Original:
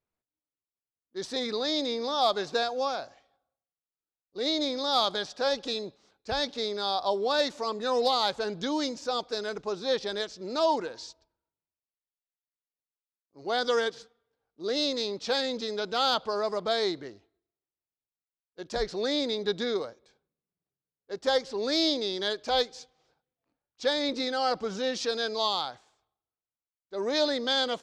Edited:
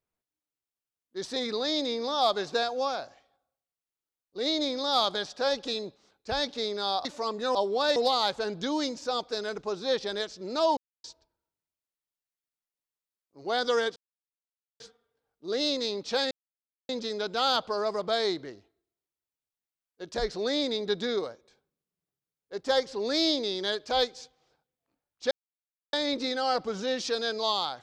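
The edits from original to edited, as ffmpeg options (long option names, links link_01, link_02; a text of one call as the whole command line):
ffmpeg -i in.wav -filter_complex "[0:a]asplit=9[link_01][link_02][link_03][link_04][link_05][link_06][link_07][link_08][link_09];[link_01]atrim=end=7.052[link_10];[link_02]atrim=start=7.458:end=7.962[link_11];[link_03]atrim=start=7.048:end=7.462[link_12];[link_04]atrim=start=7.958:end=10.77,asetpts=PTS-STARTPTS,afade=type=out:start_time=2.808:duration=0.004:curve=hsin[link_13];[link_05]atrim=start=10.77:end=11.04,asetpts=PTS-STARTPTS,volume=0[link_14];[link_06]atrim=start=11.04:end=13.96,asetpts=PTS-STARTPTS,afade=type=in:duration=0.004:curve=hsin,afade=type=out:start_time=2.916:duration=0.004:curve=hsin,apad=pad_dur=0.84[link_15];[link_07]atrim=start=13.96:end=15.47,asetpts=PTS-STARTPTS,afade=type=in:duration=0.004:curve=hsin,afade=type=out:start_time=1.506:duration=0.004:curve=hsin,apad=pad_dur=0.58[link_16];[link_08]atrim=start=15.47:end=23.89,asetpts=PTS-STARTPTS,afade=type=in:duration=0.004:curve=hsin,afade=type=out:start_time=8.416:duration=0.004:curve=hsin,apad=pad_dur=0.62[link_17];[link_09]atrim=start=23.89,asetpts=PTS-STARTPTS,afade=type=in:duration=0.004:curve=hsin[link_18];[link_10][link_11]acrossfade=duration=0.004:curve1=hsin:curve2=hsin[link_19];[link_19][link_12]acrossfade=duration=0.004:curve1=hsin:curve2=hsin[link_20];[link_13][link_14][link_15][link_16][link_17][link_18]concat=n=6:v=0:a=1[link_21];[link_20][link_21]acrossfade=duration=0.004:curve1=hsin:curve2=hsin" out.wav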